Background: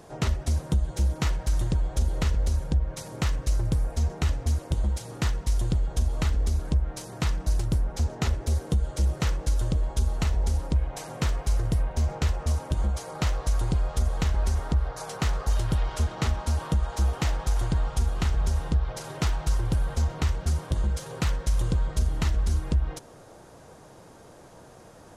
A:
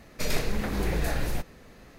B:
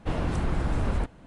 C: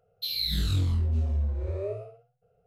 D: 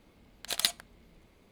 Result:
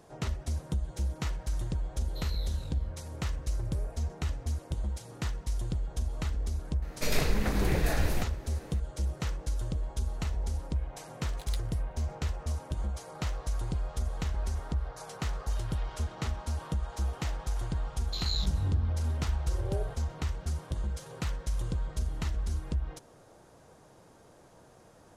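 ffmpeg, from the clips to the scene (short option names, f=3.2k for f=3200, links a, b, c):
-filter_complex "[3:a]asplit=2[a][b];[0:a]volume=-7.5dB[c];[b]afwtdn=0.0251[d];[a]atrim=end=2.66,asetpts=PTS-STARTPTS,volume=-17dB,afade=t=in:d=0.004:c=hsin,afade=t=out:st=2.656:d=0.004:c=hsin,adelay=1930[e];[1:a]atrim=end=1.98,asetpts=PTS-STARTPTS,volume=-0.5dB,afade=t=in:d=0.004:c=hsin,afade=t=out:st=1.976:d=0.004:c=hsin,adelay=300762S[f];[4:a]atrim=end=1.51,asetpts=PTS-STARTPTS,volume=-17.5dB,afade=t=in:d=0.004:c=hsin,afade=t=out:st=1.506:d=0.004:c=hsin,adelay=10890[g];[d]atrim=end=2.66,asetpts=PTS-STARTPTS,volume=-4.5dB,afade=t=in:d=0.004:c=hsin,afade=t=out:st=2.656:d=0.004:c=hsin,adelay=17900[h];[c][e][f][g][h]amix=inputs=5:normalize=0"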